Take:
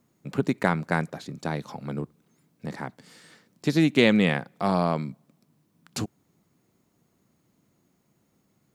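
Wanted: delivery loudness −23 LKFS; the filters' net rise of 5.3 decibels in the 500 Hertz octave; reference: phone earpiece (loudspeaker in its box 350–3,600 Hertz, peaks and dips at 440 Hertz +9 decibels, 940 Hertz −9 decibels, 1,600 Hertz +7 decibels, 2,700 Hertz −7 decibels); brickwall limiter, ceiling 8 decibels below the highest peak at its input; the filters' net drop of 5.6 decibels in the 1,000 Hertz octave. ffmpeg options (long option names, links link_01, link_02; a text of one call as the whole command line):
ffmpeg -i in.wav -af "equalizer=frequency=500:width_type=o:gain=4,equalizer=frequency=1000:width_type=o:gain=-7,alimiter=limit=-13.5dB:level=0:latency=1,highpass=350,equalizer=frequency=440:width_type=q:width=4:gain=9,equalizer=frequency=940:width_type=q:width=4:gain=-9,equalizer=frequency=1600:width_type=q:width=4:gain=7,equalizer=frequency=2700:width_type=q:width=4:gain=-7,lowpass=frequency=3600:width=0.5412,lowpass=frequency=3600:width=1.3066,volume=7dB" out.wav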